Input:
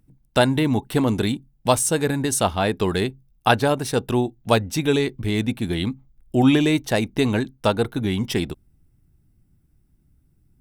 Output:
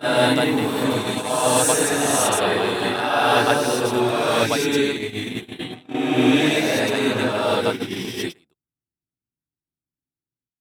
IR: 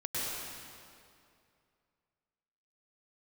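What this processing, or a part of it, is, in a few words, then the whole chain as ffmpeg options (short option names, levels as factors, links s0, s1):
ghost voice: -filter_complex "[0:a]areverse[s0];[1:a]atrim=start_sample=2205[s1];[s0][s1]afir=irnorm=-1:irlink=0,areverse,highpass=f=590:p=1,agate=range=0.0501:threshold=0.0708:ratio=16:detection=peak"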